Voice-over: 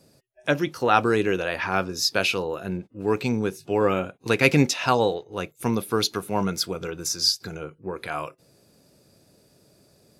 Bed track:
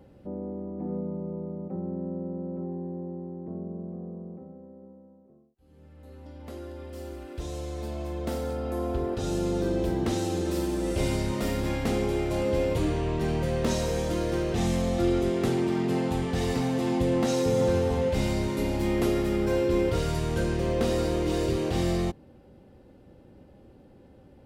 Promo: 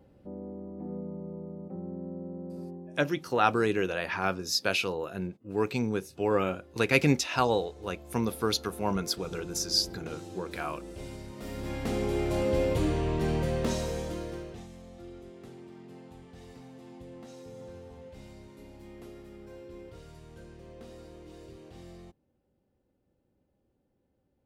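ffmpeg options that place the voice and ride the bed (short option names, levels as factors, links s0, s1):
-filter_complex "[0:a]adelay=2500,volume=0.562[s0];[1:a]volume=2.66,afade=t=out:st=2.59:d=0.47:silence=0.334965,afade=t=in:st=11.35:d=0.92:silence=0.199526,afade=t=out:st=13.36:d=1.31:silence=0.0891251[s1];[s0][s1]amix=inputs=2:normalize=0"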